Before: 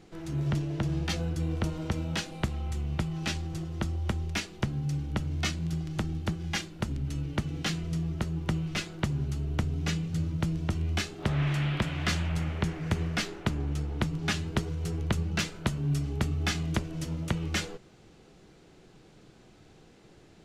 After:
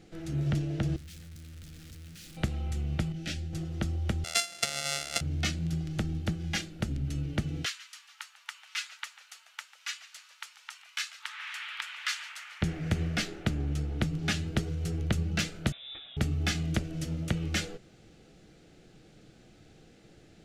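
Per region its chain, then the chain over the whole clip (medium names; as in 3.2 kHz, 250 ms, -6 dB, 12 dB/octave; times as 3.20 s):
0.96–2.37 s: one-bit comparator + amplifier tone stack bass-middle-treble 6-0-2 + loudspeaker Doppler distortion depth 0.15 ms
3.12–3.53 s: Butterworth band-stop 1 kHz, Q 1.5 + detune thickener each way 30 cents
4.24–5.21 s: sorted samples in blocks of 64 samples + frequency weighting ITU-R 468
7.65–12.62 s: brick-wall FIR high-pass 860 Hz + frequency-shifting echo 144 ms, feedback 64%, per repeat -80 Hz, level -17 dB
15.72–16.17 s: high-pass 1.1 kHz 6 dB/octave + frequency inversion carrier 3.7 kHz
whole clip: peaking EQ 1 kHz -12.5 dB 0.35 oct; band-stop 390 Hz, Q 12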